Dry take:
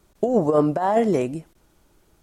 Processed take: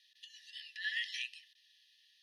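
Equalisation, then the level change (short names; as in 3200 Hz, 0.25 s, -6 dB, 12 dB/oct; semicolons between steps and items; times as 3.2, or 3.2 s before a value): brick-wall FIR high-pass 1700 Hz; LPF 4300 Hz 12 dB/oct; fixed phaser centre 2200 Hz, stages 6; +10.0 dB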